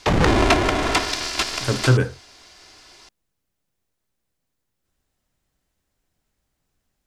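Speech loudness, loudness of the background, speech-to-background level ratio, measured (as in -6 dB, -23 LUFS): -22.0 LUFS, -20.5 LUFS, -1.5 dB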